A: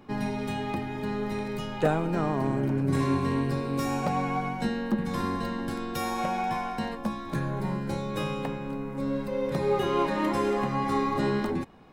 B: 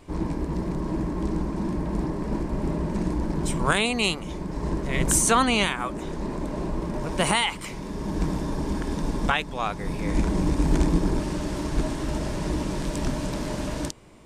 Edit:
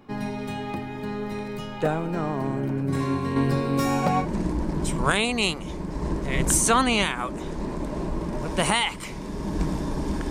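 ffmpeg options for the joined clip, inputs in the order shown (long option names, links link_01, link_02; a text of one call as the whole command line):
ffmpeg -i cue0.wav -i cue1.wav -filter_complex "[0:a]asettb=1/sr,asplit=3[link_01][link_02][link_03];[link_01]atrim=end=3.364[link_04];[link_02]atrim=start=3.36:end=4.27,asetpts=PTS-STARTPTS,afade=type=in:duration=0.004:curve=qsin,afade=type=out:start_time=0.906:duration=0.004:curve=qsin,acontrast=34[link_05];[link_03]atrim=start=4.266[link_06];[link_04][link_05]acrossfade=duration=0.004:curve1=hsin:curve2=qsin[link_07];[link_07][link_06]acrossfade=duration=0.004:curve1=qsin:curve2=hsin,apad=whole_dur=10.3,atrim=end=10.3,atrim=end=4.27,asetpts=PTS-STARTPTS[link_08];[1:a]atrim=start=2.8:end=8.91,asetpts=PTS-STARTPTS[link_09];[link_08][link_09]acrossfade=duration=0.08:curve1=tri:curve2=tri" out.wav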